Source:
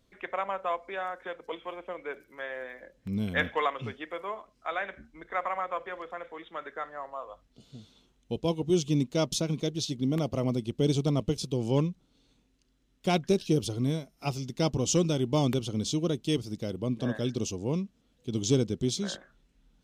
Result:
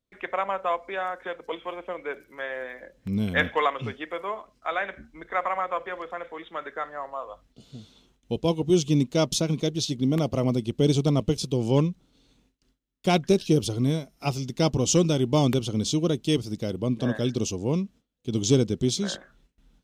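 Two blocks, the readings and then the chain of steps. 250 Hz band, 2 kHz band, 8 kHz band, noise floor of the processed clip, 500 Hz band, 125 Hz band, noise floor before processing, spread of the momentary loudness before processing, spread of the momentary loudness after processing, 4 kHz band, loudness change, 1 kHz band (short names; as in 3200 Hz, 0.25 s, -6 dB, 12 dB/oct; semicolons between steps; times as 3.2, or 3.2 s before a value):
+4.5 dB, +4.5 dB, +4.5 dB, -70 dBFS, +4.5 dB, +4.5 dB, -69 dBFS, 13 LU, 13 LU, +4.5 dB, +4.5 dB, +4.5 dB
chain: gate with hold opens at -57 dBFS; gain +4.5 dB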